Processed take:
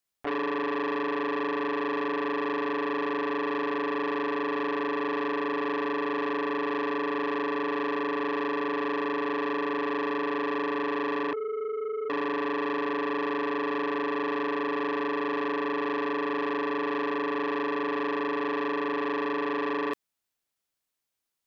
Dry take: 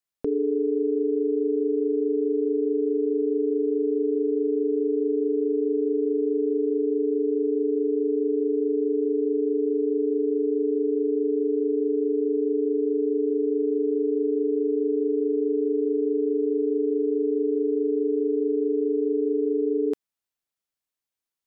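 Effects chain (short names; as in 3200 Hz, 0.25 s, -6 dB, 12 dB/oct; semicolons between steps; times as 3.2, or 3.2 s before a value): limiter -22 dBFS, peak gain reduction 6 dB; 11.33–12.1 Chebyshev high-pass 450 Hz, order 5; core saturation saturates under 1300 Hz; gain +4.5 dB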